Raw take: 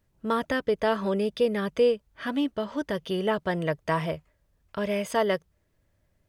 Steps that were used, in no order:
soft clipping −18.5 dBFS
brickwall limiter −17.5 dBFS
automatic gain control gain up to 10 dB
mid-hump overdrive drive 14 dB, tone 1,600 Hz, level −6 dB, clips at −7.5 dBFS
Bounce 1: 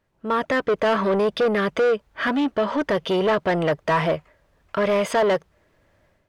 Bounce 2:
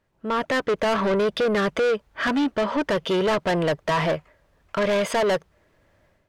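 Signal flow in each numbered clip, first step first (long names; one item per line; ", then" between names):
automatic gain control, then soft clipping, then brickwall limiter, then mid-hump overdrive
brickwall limiter, then mid-hump overdrive, then automatic gain control, then soft clipping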